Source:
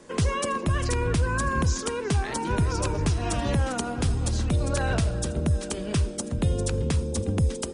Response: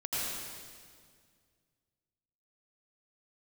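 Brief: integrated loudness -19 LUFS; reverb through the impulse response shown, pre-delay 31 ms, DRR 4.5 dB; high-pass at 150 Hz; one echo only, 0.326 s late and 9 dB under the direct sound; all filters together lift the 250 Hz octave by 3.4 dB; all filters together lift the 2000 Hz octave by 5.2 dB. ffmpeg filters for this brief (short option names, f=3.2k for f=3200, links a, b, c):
-filter_complex "[0:a]highpass=150,equalizer=f=250:t=o:g=5.5,equalizer=f=2k:t=o:g=7,aecho=1:1:326:0.355,asplit=2[a][b];[1:a]atrim=start_sample=2205,adelay=31[c];[b][c]afir=irnorm=-1:irlink=0,volume=-10.5dB[d];[a][d]amix=inputs=2:normalize=0,volume=5.5dB"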